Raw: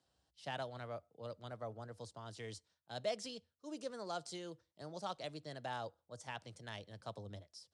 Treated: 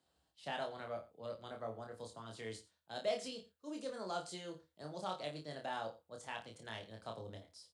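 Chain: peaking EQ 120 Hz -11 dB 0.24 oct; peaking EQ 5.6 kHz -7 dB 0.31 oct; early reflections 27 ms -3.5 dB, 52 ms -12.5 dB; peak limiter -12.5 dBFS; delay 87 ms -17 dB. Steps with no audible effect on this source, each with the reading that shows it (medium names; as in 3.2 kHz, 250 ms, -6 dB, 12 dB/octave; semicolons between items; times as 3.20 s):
peak limiter -12.5 dBFS: peak at its input -23.5 dBFS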